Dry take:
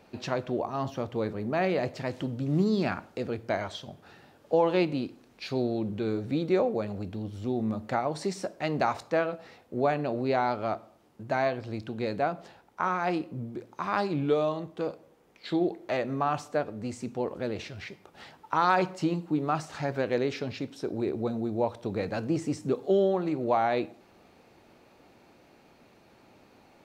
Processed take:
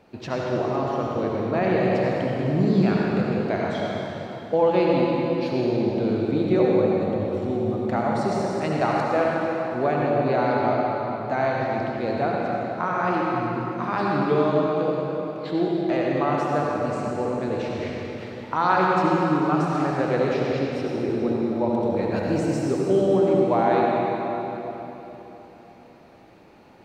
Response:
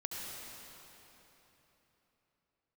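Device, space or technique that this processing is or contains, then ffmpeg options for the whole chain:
swimming-pool hall: -filter_complex "[0:a]asettb=1/sr,asplit=3[s0][s1][s2];[s0]atrim=end=22.164[s3];[s1]atrim=start=22.16:end=22.66,asetpts=PTS-STARTPTS,afade=t=in:d=0.004:c=qsin,afade=t=out:st=0.496:d=0.004:c=qsin,aemphasis=mode=production:type=cd[s4];[s2]atrim=start=22.656[s5];[s3][s4]acrossfade=d=0.004:c1=hsin:c2=qsin[s6];[s6][s5]acrossfade=d=0.004:c1=qsin:c2=hsin[s7];[1:a]atrim=start_sample=2205[s8];[s7][s8]afir=irnorm=-1:irlink=0,highshelf=f=3600:g=-7,volume=1.88"

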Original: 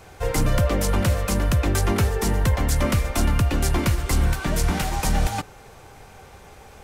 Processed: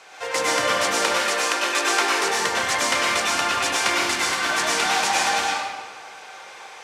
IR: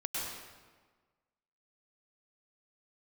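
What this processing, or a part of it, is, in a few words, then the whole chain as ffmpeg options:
supermarket ceiling speaker: -filter_complex "[0:a]asettb=1/sr,asplit=3[s0][s1][s2];[s0]atrim=end=1.014[s3];[s1]atrim=start=1.01:end=2.23,asetpts=PTS-STARTPTS,afade=t=in:d=0.004:c=qsin,afade=t=out:st=1.216:d=0.004:c=qsin,highpass=f=280:w=0.5412,highpass=f=280:w=1.3066[s4];[s2]atrim=start=2.226[s5];[s3][s4]acrossfade=d=0.004:c1=hsin:c2=qsin[s6];[s6][s5]acrossfade=d=0.004:c1=qsin:c2=hsin,highpass=330,lowpass=6300[s7];[1:a]atrim=start_sample=2205[s8];[s7][s8]afir=irnorm=-1:irlink=0,tiltshelf=f=640:g=-8.5"

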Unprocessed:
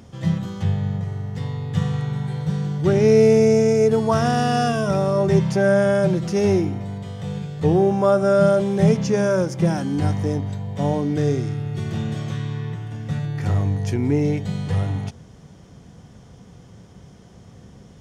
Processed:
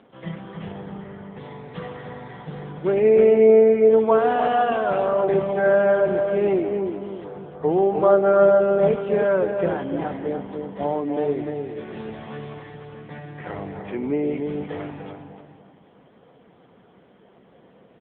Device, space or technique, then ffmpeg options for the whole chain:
satellite phone: -filter_complex "[0:a]asettb=1/sr,asplit=3[s0][s1][s2];[s0]atrim=end=7.244[s3];[s1]atrim=start=7.24:end=7.71,asetpts=PTS-STARTPTS,afade=t=in:d=0.004:c=qsin,afade=t=out:st=0.466:d=0.004:c=qsin,highshelf=f=1800:t=q:w=1.5:g=-10[s4];[s2]atrim=start=7.706[s5];[s3][s4]acrossfade=d=0.004:c1=hsin:c2=qsin[s6];[s6][s5]acrossfade=d=0.004:c1=qsin:c2=hsin,highpass=350,lowpass=3100,asplit=2[s7][s8];[s8]adelay=299,lowpass=f=1400:p=1,volume=0.596,asplit=2[s9][s10];[s10]adelay=299,lowpass=f=1400:p=1,volume=0.34,asplit=2[s11][s12];[s12]adelay=299,lowpass=f=1400:p=1,volume=0.34,asplit=2[s13][s14];[s14]adelay=299,lowpass=f=1400:p=1,volume=0.34[s15];[s7][s9][s11][s13][s15]amix=inputs=5:normalize=0,aecho=1:1:483:0.119,volume=1.19" -ar 8000 -c:a libopencore_amrnb -b:a 6700

